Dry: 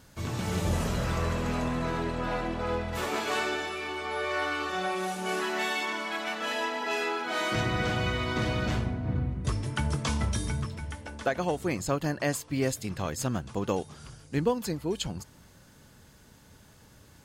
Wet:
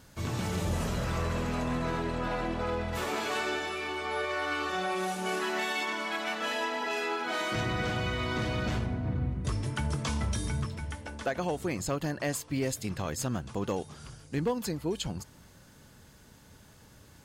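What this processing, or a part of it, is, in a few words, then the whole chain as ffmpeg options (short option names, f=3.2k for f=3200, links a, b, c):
clipper into limiter: -af "asoftclip=type=hard:threshold=-19.5dB,alimiter=limit=-22.5dB:level=0:latency=1:release=58"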